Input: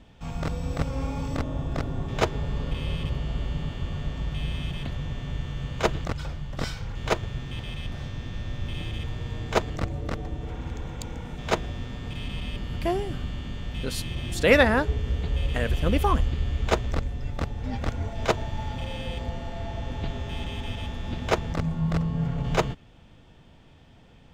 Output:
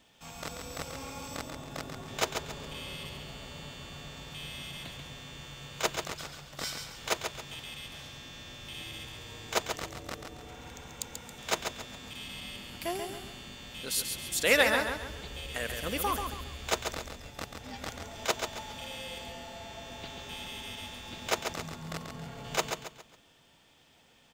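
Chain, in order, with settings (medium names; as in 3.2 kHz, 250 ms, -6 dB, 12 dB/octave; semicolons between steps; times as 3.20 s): RIAA curve recording; on a send: feedback delay 137 ms, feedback 37%, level -6 dB; on the sum: trim -6 dB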